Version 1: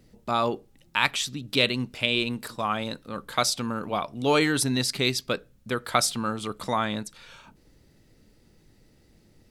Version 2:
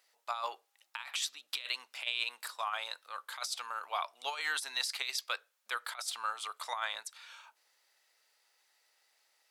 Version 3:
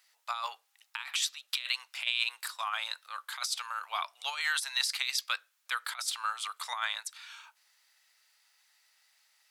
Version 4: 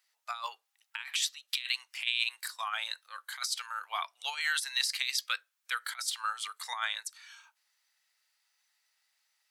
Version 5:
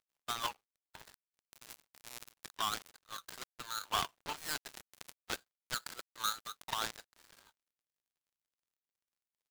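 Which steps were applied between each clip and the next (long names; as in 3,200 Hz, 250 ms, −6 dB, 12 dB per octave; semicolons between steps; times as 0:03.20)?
high-pass filter 810 Hz 24 dB per octave; compressor whose output falls as the input rises −29 dBFS, ratio −0.5; level −6 dB
high-pass filter 1,100 Hz 12 dB per octave; level +4.5 dB
noise reduction from a noise print of the clip's start 8 dB
gap after every zero crossing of 0.24 ms; level +5 dB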